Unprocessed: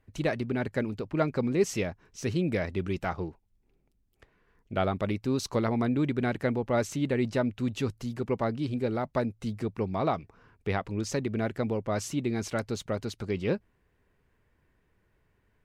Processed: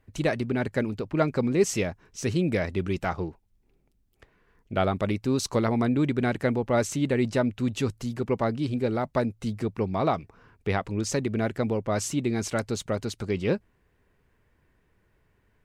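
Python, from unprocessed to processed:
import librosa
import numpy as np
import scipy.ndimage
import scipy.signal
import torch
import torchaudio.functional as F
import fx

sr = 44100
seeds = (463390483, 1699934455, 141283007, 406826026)

y = fx.dynamic_eq(x, sr, hz=8200.0, q=1.4, threshold_db=-58.0, ratio=4.0, max_db=5)
y = y * librosa.db_to_amplitude(3.0)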